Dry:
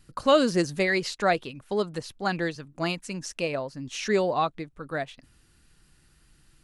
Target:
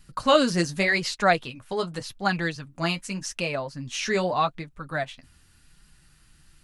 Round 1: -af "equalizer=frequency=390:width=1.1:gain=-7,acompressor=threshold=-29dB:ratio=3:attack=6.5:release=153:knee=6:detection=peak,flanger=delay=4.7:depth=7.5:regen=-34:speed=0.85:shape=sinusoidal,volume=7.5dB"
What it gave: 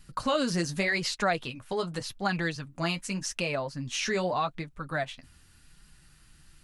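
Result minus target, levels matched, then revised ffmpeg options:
downward compressor: peak gain reduction +9.5 dB
-af "equalizer=frequency=390:width=1.1:gain=-7,flanger=delay=4.7:depth=7.5:regen=-34:speed=0.85:shape=sinusoidal,volume=7.5dB"

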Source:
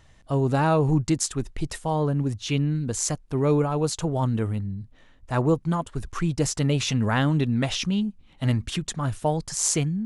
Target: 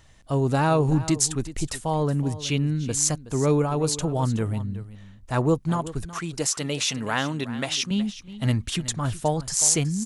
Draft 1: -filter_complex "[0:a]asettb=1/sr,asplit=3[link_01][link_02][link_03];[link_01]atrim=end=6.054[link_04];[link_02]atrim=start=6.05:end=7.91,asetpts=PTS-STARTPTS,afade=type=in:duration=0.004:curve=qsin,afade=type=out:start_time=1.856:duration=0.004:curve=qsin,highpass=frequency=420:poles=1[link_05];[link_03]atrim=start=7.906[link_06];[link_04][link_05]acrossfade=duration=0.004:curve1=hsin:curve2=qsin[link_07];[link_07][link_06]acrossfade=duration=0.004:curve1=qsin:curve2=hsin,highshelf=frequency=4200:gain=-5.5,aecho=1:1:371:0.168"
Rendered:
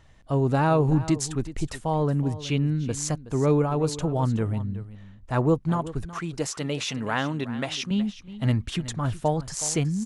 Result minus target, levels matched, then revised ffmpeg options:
8,000 Hz band −7.0 dB
-filter_complex "[0:a]asettb=1/sr,asplit=3[link_01][link_02][link_03];[link_01]atrim=end=6.054[link_04];[link_02]atrim=start=6.05:end=7.91,asetpts=PTS-STARTPTS,afade=type=in:duration=0.004:curve=qsin,afade=type=out:start_time=1.856:duration=0.004:curve=qsin,highpass=frequency=420:poles=1[link_05];[link_03]atrim=start=7.906[link_06];[link_04][link_05]acrossfade=duration=0.004:curve1=hsin:curve2=qsin[link_07];[link_07][link_06]acrossfade=duration=0.004:curve1=qsin:curve2=hsin,highshelf=frequency=4200:gain=6,aecho=1:1:371:0.168"

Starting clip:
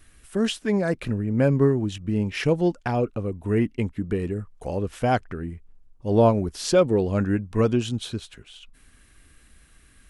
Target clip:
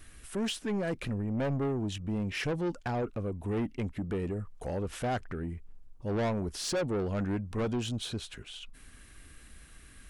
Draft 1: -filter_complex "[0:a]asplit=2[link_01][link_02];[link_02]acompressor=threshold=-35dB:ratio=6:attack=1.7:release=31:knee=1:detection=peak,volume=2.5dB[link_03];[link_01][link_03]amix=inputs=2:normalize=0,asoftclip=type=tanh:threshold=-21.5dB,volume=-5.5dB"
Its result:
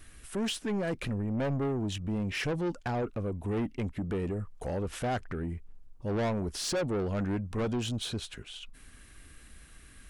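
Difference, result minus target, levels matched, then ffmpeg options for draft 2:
downward compressor: peak gain reduction −6 dB
-filter_complex "[0:a]asplit=2[link_01][link_02];[link_02]acompressor=threshold=-42.5dB:ratio=6:attack=1.7:release=31:knee=1:detection=peak,volume=2.5dB[link_03];[link_01][link_03]amix=inputs=2:normalize=0,asoftclip=type=tanh:threshold=-21.5dB,volume=-5.5dB"

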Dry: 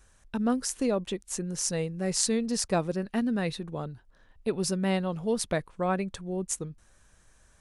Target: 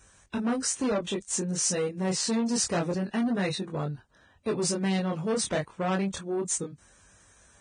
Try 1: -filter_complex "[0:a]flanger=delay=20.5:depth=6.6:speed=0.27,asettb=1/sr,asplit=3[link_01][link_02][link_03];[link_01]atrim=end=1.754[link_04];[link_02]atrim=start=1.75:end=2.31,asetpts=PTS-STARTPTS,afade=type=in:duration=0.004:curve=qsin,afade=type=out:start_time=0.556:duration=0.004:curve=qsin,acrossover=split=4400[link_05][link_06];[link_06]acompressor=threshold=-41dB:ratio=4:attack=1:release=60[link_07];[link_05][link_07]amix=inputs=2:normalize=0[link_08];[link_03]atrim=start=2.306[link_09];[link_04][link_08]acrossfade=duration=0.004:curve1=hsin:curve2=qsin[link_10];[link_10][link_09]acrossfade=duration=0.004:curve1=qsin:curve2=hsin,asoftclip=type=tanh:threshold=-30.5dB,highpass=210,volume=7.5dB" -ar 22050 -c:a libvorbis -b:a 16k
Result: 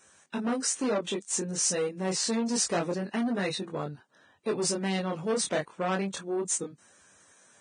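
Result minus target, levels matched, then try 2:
125 Hz band −3.5 dB
-filter_complex "[0:a]flanger=delay=20.5:depth=6.6:speed=0.27,asettb=1/sr,asplit=3[link_01][link_02][link_03];[link_01]atrim=end=1.754[link_04];[link_02]atrim=start=1.75:end=2.31,asetpts=PTS-STARTPTS,afade=type=in:duration=0.004:curve=qsin,afade=type=out:start_time=0.556:duration=0.004:curve=qsin,acrossover=split=4400[link_05][link_06];[link_06]acompressor=threshold=-41dB:ratio=4:attack=1:release=60[link_07];[link_05][link_07]amix=inputs=2:normalize=0[link_08];[link_03]atrim=start=2.306[link_09];[link_04][link_08]acrossfade=duration=0.004:curve1=hsin:curve2=qsin[link_10];[link_10][link_09]acrossfade=duration=0.004:curve1=qsin:curve2=hsin,asoftclip=type=tanh:threshold=-30.5dB,highpass=75,volume=7.5dB" -ar 22050 -c:a libvorbis -b:a 16k

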